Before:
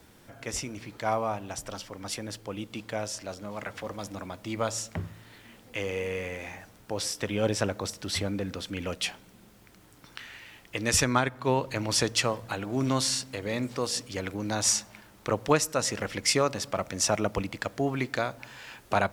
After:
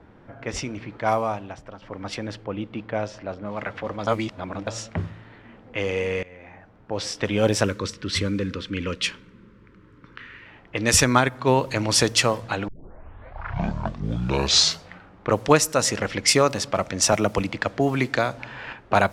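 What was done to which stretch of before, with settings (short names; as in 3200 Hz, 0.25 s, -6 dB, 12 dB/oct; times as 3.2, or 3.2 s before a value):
1.02–1.82 fade out linear, to -10 dB
2.44–3.46 LPF 2300 Hz 6 dB/oct
4.07–4.67 reverse
6.23–7.15 fade in, from -20.5 dB
7.65–10.46 Butterworth band-stop 730 Hz, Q 1.5
12.68 tape start 2.66 s
17.12–18.73 three-band squash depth 40%
whole clip: low-pass opened by the level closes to 1400 Hz, open at -23.5 dBFS; gain +6.5 dB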